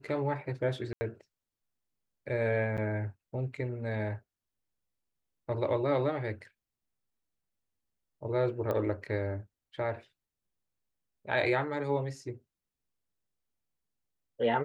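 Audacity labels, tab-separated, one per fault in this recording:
0.930000	1.010000	gap 80 ms
2.770000	2.780000	gap 8.1 ms
8.710000	8.710000	pop -21 dBFS

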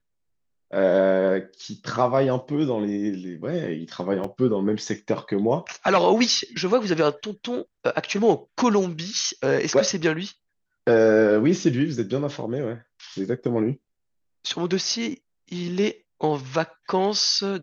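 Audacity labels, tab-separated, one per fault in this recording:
4.240000	4.240000	gap 3.8 ms

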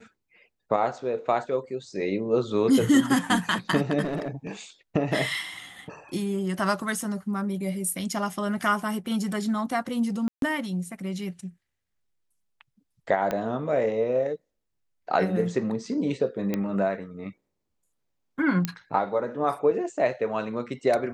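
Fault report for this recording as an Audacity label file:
4.030000	4.470000	clipped -25 dBFS
10.280000	10.420000	gap 0.142 s
13.310000	13.310000	pop -14 dBFS
16.540000	16.540000	pop -14 dBFS
18.650000	18.650000	pop -11 dBFS

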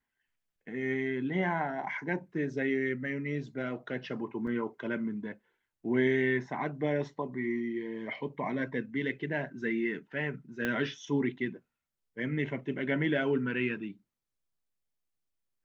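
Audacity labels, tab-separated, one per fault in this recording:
4.470000	4.470000	gap 4.6 ms
10.650000	10.650000	pop -18 dBFS

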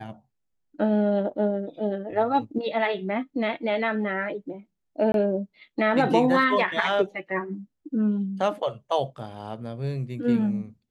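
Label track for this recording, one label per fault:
5.120000	5.140000	gap 22 ms

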